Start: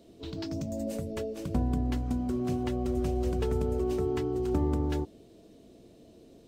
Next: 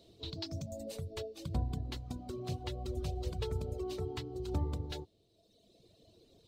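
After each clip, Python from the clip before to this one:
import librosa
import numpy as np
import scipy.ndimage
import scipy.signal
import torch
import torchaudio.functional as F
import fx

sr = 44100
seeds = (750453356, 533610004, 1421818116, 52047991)

y = fx.dereverb_blind(x, sr, rt60_s=1.5)
y = fx.graphic_eq_15(y, sr, hz=(100, 250, 1600, 4000), db=(6, -8, -4, 11))
y = y * 10.0 ** (-4.5 / 20.0)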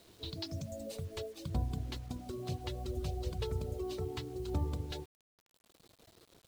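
y = fx.quant_dither(x, sr, seeds[0], bits=10, dither='none')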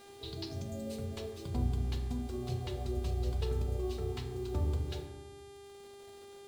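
y = fx.dmg_buzz(x, sr, base_hz=400.0, harmonics=29, level_db=-55.0, tilt_db=-5, odd_only=False)
y = fx.rev_fdn(y, sr, rt60_s=1.2, lf_ratio=1.45, hf_ratio=0.4, size_ms=25.0, drr_db=2.5)
y = y * 10.0 ** (-2.5 / 20.0)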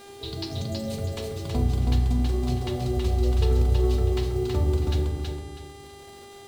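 y = fx.echo_feedback(x, sr, ms=324, feedback_pct=29, wet_db=-3.5)
y = y * 10.0 ** (8.5 / 20.0)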